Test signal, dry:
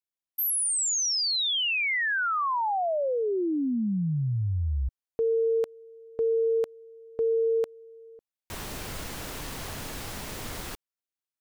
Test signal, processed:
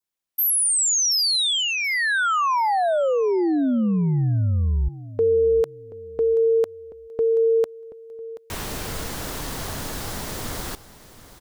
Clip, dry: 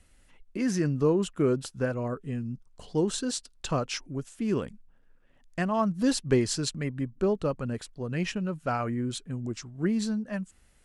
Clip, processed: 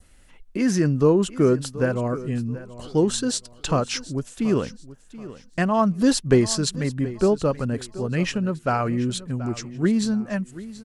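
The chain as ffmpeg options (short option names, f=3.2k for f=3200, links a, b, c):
-af "adynamicequalizer=threshold=0.00282:dfrequency=2500:dqfactor=2.1:tfrequency=2500:tqfactor=2.1:attack=5:release=100:ratio=0.375:range=2.5:mode=cutabove:tftype=bell,aecho=1:1:730|1460|2190:0.15|0.0419|0.0117,volume=6.5dB"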